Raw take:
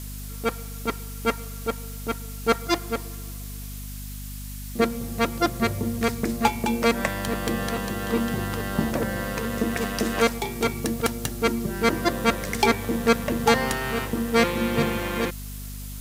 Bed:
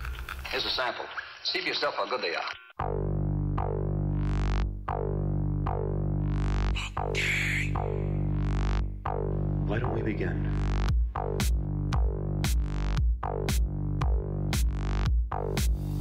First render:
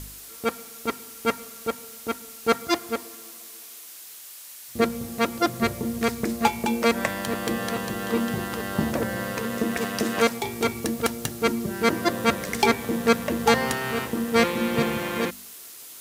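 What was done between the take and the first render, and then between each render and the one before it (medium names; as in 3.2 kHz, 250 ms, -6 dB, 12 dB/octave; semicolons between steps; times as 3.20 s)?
de-hum 50 Hz, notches 5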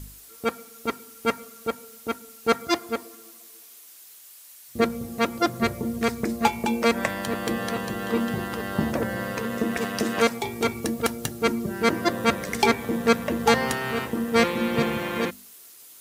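noise reduction 7 dB, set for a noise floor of -43 dBFS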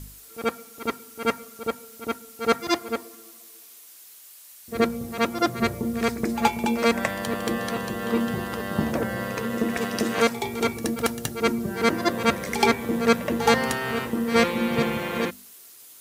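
pre-echo 73 ms -12 dB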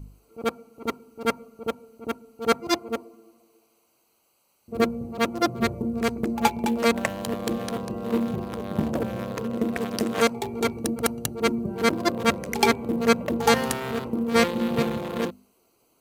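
local Wiener filter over 25 samples; treble shelf 6.8 kHz +6.5 dB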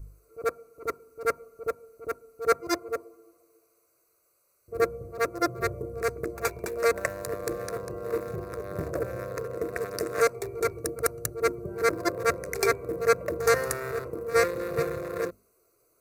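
static phaser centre 850 Hz, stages 6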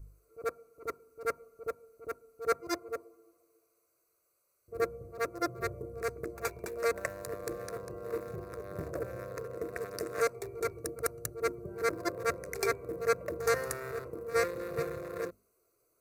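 trim -6.5 dB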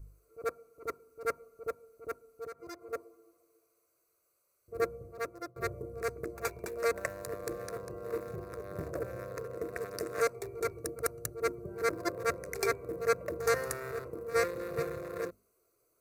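2.44–2.93 s: compression 4:1, threshold -43 dBFS; 4.81–5.56 s: fade out equal-power, to -21.5 dB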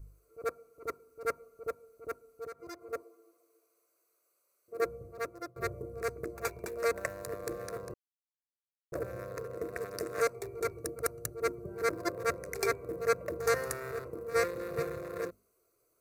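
3.03–4.85 s: high-pass 250 Hz; 7.94–8.92 s: mute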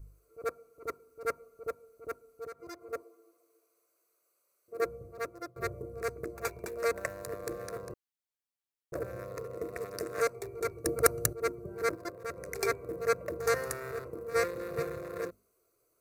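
9.23–9.93 s: band-stop 1.6 kHz, Q 6.7; 10.86–11.33 s: gain +9 dB; 11.95–12.37 s: level held to a coarse grid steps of 12 dB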